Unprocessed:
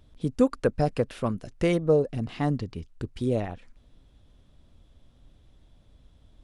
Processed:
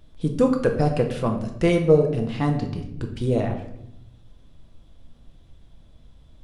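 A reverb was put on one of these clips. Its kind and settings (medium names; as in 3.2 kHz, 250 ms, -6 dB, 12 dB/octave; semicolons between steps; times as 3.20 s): simulated room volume 210 m³, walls mixed, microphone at 0.72 m; trim +2.5 dB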